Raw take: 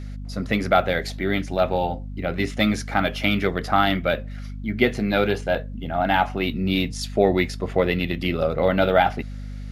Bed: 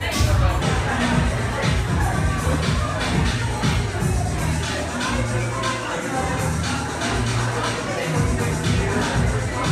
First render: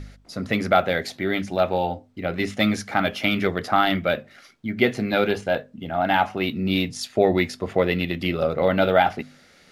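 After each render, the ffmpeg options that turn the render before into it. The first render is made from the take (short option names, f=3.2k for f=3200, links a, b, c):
-af "bandreject=f=50:t=h:w=4,bandreject=f=100:t=h:w=4,bandreject=f=150:t=h:w=4,bandreject=f=200:t=h:w=4,bandreject=f=250:t=h:w=4"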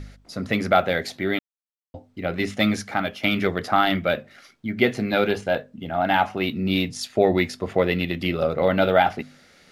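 -filter_complex "[0:a]asplit=4[a][b][c][d];[a]atrim=end=1.39,asetpts=PTS-STARTPTS,afade=t=out:st=1.386:d=0.004:c=hsin[e];[b]atrim=start=1.39:end=1.94,asetpts=PTS-STARTPTS,volume=0[f];[c]atrim=start=1.94:end=3.23,asetpts=PTS-STARTPTS,afade=t=in:d=0.004:c=hsin,afade=t=out:st=0.86:d=0.43:silence=0.398107[g];[d]atrim=start=3.23,asetpts=PTS-STARTPTS,afade=t=in:d=0.004:c=hsin:silence=0.398107[h];[e][f][g][h]concat=n=4:v=0:a=1"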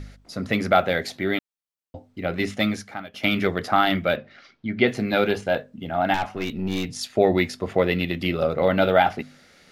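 -filter_complex "[0:a]asettb=1/sr,asplit=3[a][b][c];[a]atrim=end=4.164[d];[b]atrim=start=4.16:end=4.88,asetpts=PTS-STARTPTS,afade=t=in:d=0.004:c=qsin,afade=t=out:st=0.716:d=0.004:c=qsin,lowpass=f=5k:w=0.5412,lowpass=f=5k:w=1.3066[e];[c]atrim=start=4.876[f];[d][e]acrossfade=d=0.004:c1=hsin:c2=qsin[g];[g][f]acrossfade=d=0.004:c1=qsin:c2=hsin,asettb=1/sr,asplit=3[h][i][j];[h]atrim=end=6.144[k];[i]atrim=start=6.14:end=6.89,asetpts=PTS-STARTPTS,afade=t=in:d=0.004:c=qsin,afade=t=out:st=0.746:d=0.004:c=qsin,aeval=exprs='(tanh(10*val(0)+0.55)-tanh(0.55))/10':c=same[l];[j]atrim=start=6.886[m];[k][l]acrossfade=d=0.004:c1=hsin:c2=qsin[n];[n][m]acrossfade=d=0.004:c1=qsin:c2=hsin,asplit=2[o][p];[o]atrim=end=3.14,asetpts=PTS-STARTPTS,afade=t=out:st=2.48:d=0.66:silence=0.11885[q];[p]atrim=start=3.14,asetpts=PTS-STARTPTS,afade=t=in:d=0.004:c=hsin:silence=0.11885[r];[q][r]concat=n=2:v=0:a=1"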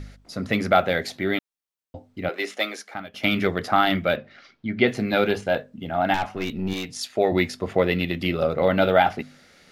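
-filter_complex "[0:a]asettb=1/sr,asplit=3[a][b][c];[a]atrim=end=2.294[d];[b]atrim=start=2.29:end=2.95,asetpts=PTS-STARTPTS,afade=t=in:d=0.004:c=qsin,afade=t=out:st=0.656:d=0.004:c=qsin,highpass=f=370:w=0.5412,highpass=f=370:w=1.3066[e];[c]atrim=start=2.946[f];[d][e]acrossfade=d=0.004:c1=hsin:c2=qsin[g];[g][f]acrossfade=d=0.004:c1=qsin:c2=hsin,asettb=1/sr,asplit=3[h][i][j];[h]atrim=end=6.734[k];[i]atrim=start=6.73:end=7.32,asetpts=PTS-STARTPTS,afade=t=in:d=0.004:c=qsin,afade=t=out:st=0.586:d=0.004:c=qsin,lowshelf=f=280:g=-9.5[l];[j]atrim=start=7.316[m];[k][l]acrossfade=d=0.004:c1=hsin:c2=qsin[n];[n][m]acrossfade=d=0.004:c1=qsin:c2=hsin"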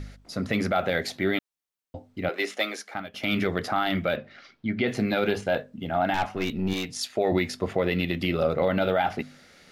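-af "alimiter=limit=-13.5dB:level=0:latency=1:release=68"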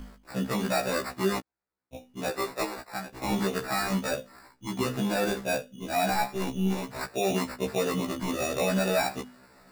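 -af "acrusher=samples=14:mix=1:aa=0.000001,afftfilt=real='re*1.73*eq(mod(b,3),0)':imag='im*1.73*eq(mod(b,3),0)':win_size=2048:overlap=0.75"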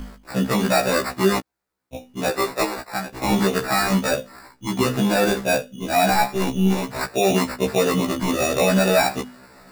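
-af "volume=8.5dB"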